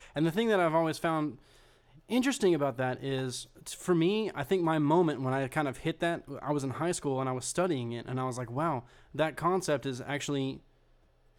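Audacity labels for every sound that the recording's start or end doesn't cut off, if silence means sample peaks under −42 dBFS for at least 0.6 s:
2.100000	10.570000	sound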